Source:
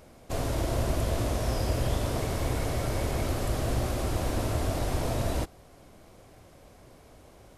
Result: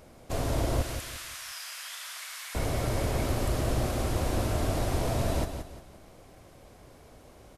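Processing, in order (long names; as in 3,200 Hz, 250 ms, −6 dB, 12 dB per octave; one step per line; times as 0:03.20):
0:00.82–0:02.55: high-pass filter 1,400 Hz 24 dB per octave
repeating echo 175 ms, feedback 34%, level −8.5 dB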